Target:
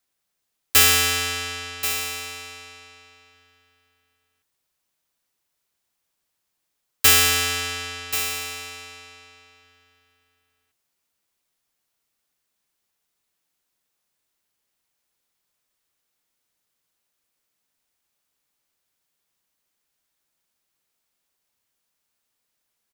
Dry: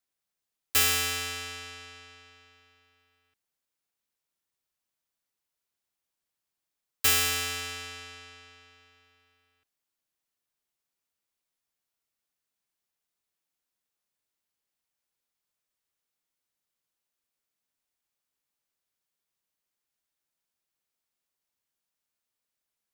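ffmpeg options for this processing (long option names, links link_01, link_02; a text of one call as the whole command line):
ffmpeg -i in.wav -af "aecho=1:1:1083:0.299,volume=8.5dB" out.wav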